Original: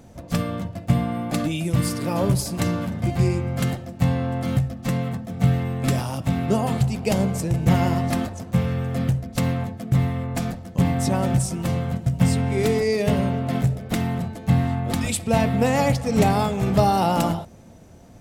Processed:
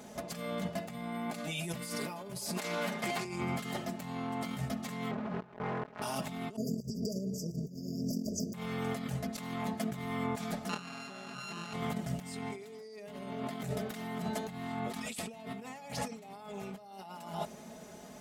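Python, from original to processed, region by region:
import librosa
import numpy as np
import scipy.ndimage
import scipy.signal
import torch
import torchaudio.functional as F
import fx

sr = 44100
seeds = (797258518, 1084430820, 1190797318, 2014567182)

y = fx.chain(x, sr, fx.highpass(hz=540.0, slope=6),
    fx.doppler_dist(depth_ms=0.2), at=(2.57, 3.25))
y = fx.chain(y, sr, fx.low_shelf(hz=270.0, db=5.5),
    fx.quant_companded(bits=2),
    fx.lowpass(hz=1400.0, slope=12), at=(5.11, 6.02))
y = fx.chain(y, sr, fx.over_compress(threshold_db=-26.0, ratio=-0.5),
    fx.brickwall_bandstop(low_hz=680.0, high_hz=4600.0),
    fx.fixed_phaser(hz=2900.0, stages=6), at=(6.56, 8.54))
y = fx.chain(y, sr, fx.sample_sort(block=32),
    fx.bandpass_edges(low_hz=140.0, high_hz=6100.0),
    fx.env_flatten(amount_pct=50), at=(10.69, 11.73))
y = fx.highpass(y, sr, hz=480.0, slope=6)
y = y + 0.83 * np.pad(y, (int(4.8 * sr / 1000.0), 0))[:len(y)]
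y = fx.over_compress(y, sr, threshold_db=-35.0, ratio=-1.0)
y = y * librosa.db_to_amplitude(-5.5)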